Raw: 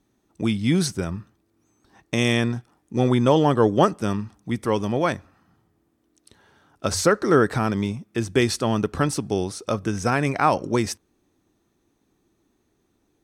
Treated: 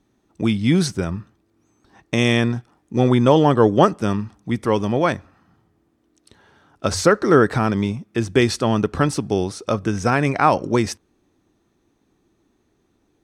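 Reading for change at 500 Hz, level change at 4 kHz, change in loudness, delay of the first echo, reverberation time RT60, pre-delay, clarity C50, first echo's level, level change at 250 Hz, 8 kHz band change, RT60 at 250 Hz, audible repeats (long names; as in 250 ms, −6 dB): +3.5 dB, +2.0 dB, +3.5 dB, no echo audible, no reverb audible, no reverb audible, no reverb audible, no echo audible, +3.5 dB, 0.0 dB, no reverb audible, no echo audible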